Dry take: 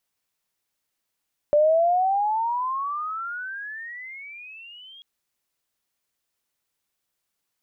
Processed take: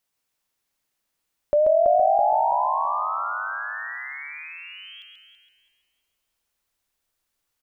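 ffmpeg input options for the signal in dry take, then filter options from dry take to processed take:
-f lavfi -i "aevalsrc='pow(10,(-14-29*t/3.49)/20)*sin(2*PI*584*3.49/(30*log(2)/12)*(exp(30*log(2)/12*t/3.49)-1))':d=3.49:s=44100"
-filter_complex "[0:a]asplit=2[a][b];[b]adelay=330,lowpass=f=1.9k:p=1,volume=-4dB,asplit=2[c][d];[d]adelay=330,lowpass=f=1.9k:p=1,volume=0.47,asplit=2[e][f];[f]adelay=330,lowpass=f=1.9k:p=1,volume=0.47,asplit=2[g][h];[h]adelay=330,lowpass=f=1.9k:p=1,volume=0.47,asplit=2[i][j];[j]adelay=330,lowpass=f=1.9k:p=1,volume=0.47,asplit=2[k][l];[l]adelay=330,lowpass=f=1.9k:p=1,volume=0.47[m];[c][e][g][i][k][m]amix=inputs=6:normalize=0[n];[a][n]amix=inputs=2:normalize=0,asubboost=boost=3:cutoff=80,asplit=2[o][p];[p]aecho=0:1:135:0.562[q];[o][q]amix=inputs=2:normalize=0"

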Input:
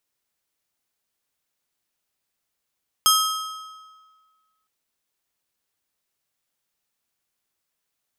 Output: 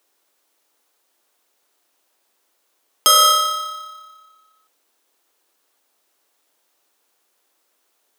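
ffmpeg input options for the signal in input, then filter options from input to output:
-f lavfi -i "aevalsrc='0.15*pow(10,-3*t/1.65)*sin(2*PI*1280*t)+0.126*pow(10,-3*t/1.253)*sin(2*PI*3200*t)+0.106*pow(10,-3*t/1.089)*sin(2*PI*5120*t)+0.0891*pow(10,-3*t/1.018)*sin(2*PI*6400*t)+0.075*pow(10,-3*t/0.941)*sin(2*PI*8320*t)+0.0631*pow(10,-3*t/0.868)*sin(2*PI*10880*t)+0.0531*pow(10,-3*t/0.854)*sin(2*PI*11520*t)+0.0447*pow(10,-3*t/0.827)*sin(2*PI*12800*t)':d=1.61:s=44100"
-filter_complex "[0:a]asplit=2[a][b];[b]acrusher=samples=17:mix=1:aa=0.000001,volume=-8dB[c];[a][c]amix=inputs=2:normalize=0,highpass=f=300:w=0.5412,highpass=f=300:w=1.3066,alimiter=level_in=11.5dB:limit=-1dB:release=50:level=0:latency=1"

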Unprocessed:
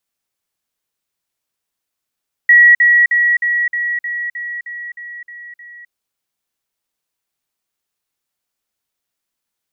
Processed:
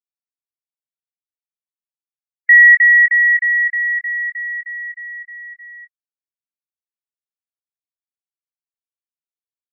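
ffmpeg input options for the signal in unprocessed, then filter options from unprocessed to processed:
-f lavfi -i "aevalsrc='pow(10,(-4-3*floor(t/0.31))/20)*sin(2*PI*1920*t)*clip(min(mod(t,0.31),0.26-mod(t,0.31))/0.005,0,1)':d=3.41:s=44100"
-filter_complex "[0:a]afftdn=nr=35:nf=-29,asplit=2[a][b];[b]adelay=22,volume=-8.5dB[c];[a][c]amix=inputs=2:normalize=0"

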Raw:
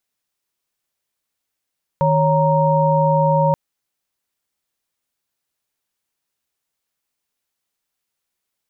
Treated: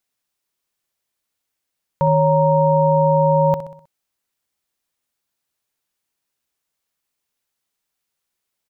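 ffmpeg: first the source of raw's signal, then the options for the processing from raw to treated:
-f lavfi -i "aevalsrc='0.141*(sin(2*PI*155.56*t)+sin(2*PI*554.37*t)+sin(2*PI*932.33*t))':d=1.53:s=44100"
-af "aecho=1:1:63|126|189|252|315:0.237|0.121|0.0617|0.0315|0.016"

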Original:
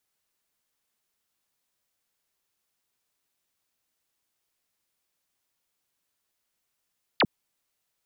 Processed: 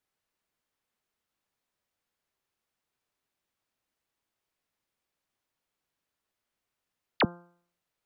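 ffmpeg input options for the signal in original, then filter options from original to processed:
-f lavfi -i "aevalsrc='0.133*clip(t/0.002,0,1)*clip((0.05-t)/0.002,0,1)*sin(2*PI*5100*0.05/log(120/5100)*(exp(log(120/5100)*t/0.05)-1))':d=0.05:s=44100"
-af "highshelf=f=3.8k:g=-11,bandreject=f=173.7:t=h:w=4,bandreject=f=347.4:t=h:w=4,bandreject=f=521.1:t=h:w=4,bandreject=f=694.8:t=h:w=4,bandreject=f=868.5:t=h:w=4,bandreject=f=1.0422k:t=h:w=4,bandreject=f=1.2159k:t=h:w=4,bandreject=f=1.3896k:t=h:w=4,bandreject=f=1.5633k:t=h:w=4"

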